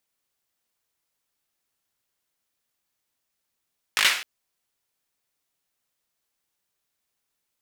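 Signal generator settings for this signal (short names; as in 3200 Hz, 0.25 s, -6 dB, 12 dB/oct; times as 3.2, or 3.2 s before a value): hand clap length 0.26 s, bursts 5, apart 19 ms, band 2200 Hz, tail 0.48 s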